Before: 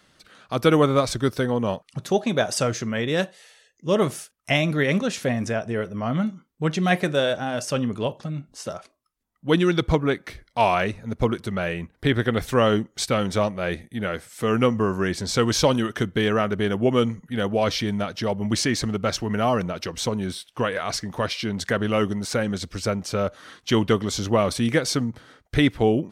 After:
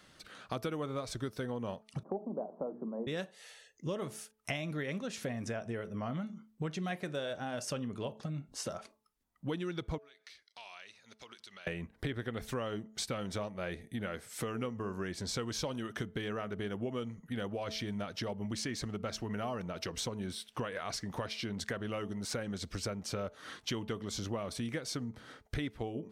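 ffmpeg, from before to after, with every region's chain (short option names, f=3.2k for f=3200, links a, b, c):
-filter_complex "[0:a]asettb=1/sr,asplit=3[a][b][c];[a]atrim=end=2.034[d];[b]atrim=start=2.03:end=3.07,asetpts=PTS-STARTPTS,afade=t=in:d=0.004:c=qsin,afade=t=out:st=1.036:d=0.004:c=qsin,asuperpass=centerf=420:order=12:qfactor=0.5,bandreject=f=60:t=h:w=6,bandreject=f=120:t=h:w=6,bandreject=f=180:t=h:w=6,bandreject=f=240:t=h:w=6,bandreject=f=300:t=h:w=6,bandreject=f=360:t=h:w=6,bandreject=f=420:t=h:w=6[e];[c]atrim=start=3.066[f];[d][e]acrossfade=d=0.004:c1=hsin:c2=qsin[g];[g][f]acrossfade=d=0.004:c1=qsin:c2=hsin,asettb=1/sr,asplit=3[h][i][j];[h]atrim=end=9.984[k];[i]atrim=start=9.98:end=11.67,asetpts=PTS-STARTPTS,afade=t=in:d=0.004:c=qsin,afade=t=out:st=1.686:d=0.004:c=qsin,bandpass=f=4.5k:t=q:w=1.5,acompressor=threshold=-47dB:ratio=4:attack=3.2:release=140:knee=1:detection=peak[l];[j]atrim=start=11.666[m];[k][l]acrossfade=d=0.004:c1=hsin:c2=qsin[n];[n][m]acrossfade=d=0.004:c1=qsin:c2=hsin,acompressor=threshold=-34dB:ratio=6,bandreject=f=217:t=h:w=4,bandreject=f=434:t=h:w=4,bandreject=f=651:t=h:w=4,bandreject=f=868:t=h:w=4,volume=-1.5dB"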